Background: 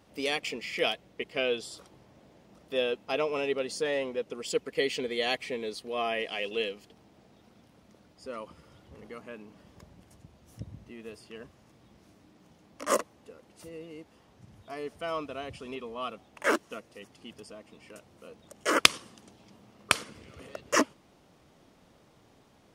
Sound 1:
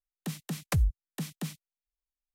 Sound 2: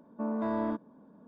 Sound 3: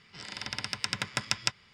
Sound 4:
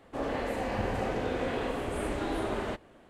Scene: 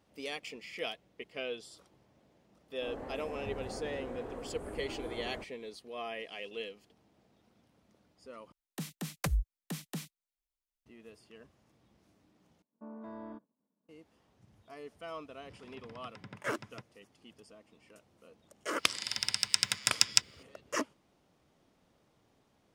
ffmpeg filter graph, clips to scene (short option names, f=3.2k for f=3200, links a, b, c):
-filter_complex "[3:a]asplit=2[a][b];[0:a]volume=-9.5dB[c];[4:a]equalizer=f=3.2k:w=0.73:g=-12.5[d];[1:a]equalizer=f=98:w=1.9:g=-13.5[e];[2:a]agate=range=-33dB:threshold=-47dB:ratio=3:release=100:detection=peak[f];[a]bandpass=f=220:t=q:w=0.54:csg=0[g];[b]crystalizer=i=6:c=0[h];[c]asplit=3[i][j][k];[i]atrim=end=8.524[l];[e]atrim=end=2.34,asetpts=PTS-STARTPTS,volume=-2dB[m];[j]atrim=start=10.856:end=12.624[n];[f]atrim=end=1.27,asetpts=PTS-STARTPTS,volume=-14.5dB[o];[k]atrim=start=13.886[p];[d]atrim=end=3.09,asetpts=PTS-STARTPTS,volume=-10dB,afade=t=in:d=0.004:c=hsin,afade=t=out:st=3.086:d=0.004:c=hsin,adelay=2680[q];[g]atrim=end=1.73,asetpts=PTS-STARTPTS,volume=-7dB,afade=t=in:d=0.004:c=hsin,afade=t=out:st=1.726:d=0.004:c=hsin,adelay=15310[r];[h]atrim=end=1.73,asetpts=PTS-STARTPTS,volume=-8.5dB,afade=t=in:d=0.004:c=hsin,afade=t=out:st=1.726:d=0.004:c=hsin,adelay=18700[s];[l][m]acrossfade=d=0.004:c1=hsin:c2=hsin[t];[t][n]acrossfade=d=0.004:c1=hsin:c2=hsin[u];[u][o]acrossfade=d=0.004:c1=hsin:c2=hsin[v];[v][p]acrossfade=d=0.004:c1=hsin:c2=hsin[w];[w][q][r][s]amix=inputs=4:normalize=0"